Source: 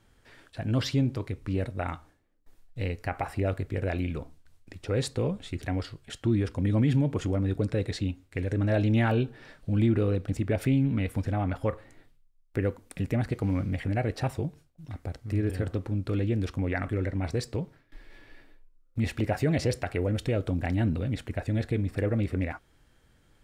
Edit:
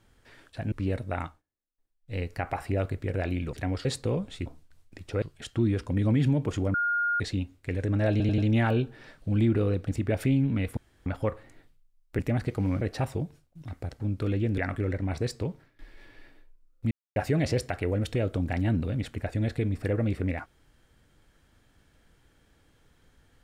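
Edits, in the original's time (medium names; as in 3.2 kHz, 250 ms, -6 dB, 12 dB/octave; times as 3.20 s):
0.72–1.40 s: delete
1.92–2.88 s: dip -23 dB, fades 0.18 s
4.21–4.97 s: swap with 5.58–5.90 s
7.42–7.88 s: bleep 1.42 kHz -23.5 dBFS
8.79 s: stutter 0.09 s, 4 plays
11.18–11.47 s: room tone
12.60–13.03 s: delete
13.65–14.04 s: delete
15.23–15.87 s: delete
16.45–16.71 s: delete
19.04–19.29 s: mute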